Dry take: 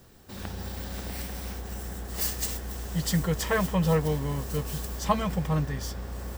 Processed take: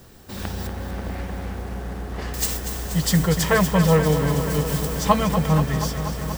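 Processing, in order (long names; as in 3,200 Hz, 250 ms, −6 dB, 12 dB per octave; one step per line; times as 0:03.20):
0:00.67–0:02.34: low-pass filter 1,900 Hz 12 dB per octave
feedback echo at a low word length 240 ms, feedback 80%, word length 8 bits, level −9 dB
level +7 dB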